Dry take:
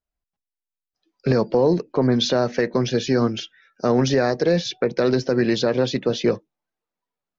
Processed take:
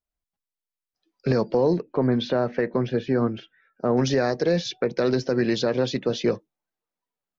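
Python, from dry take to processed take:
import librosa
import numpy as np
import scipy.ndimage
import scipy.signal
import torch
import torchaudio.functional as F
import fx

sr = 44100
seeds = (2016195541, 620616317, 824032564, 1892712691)

y = fx.lowpass(x, sr, hz=fx.line((1.76, 3000.0), (3.96, 1500.0)), slope=12, at=(1.76, 3.96), fade=0.02)
y = y * 10.0 ** (-3.0 / 20.0)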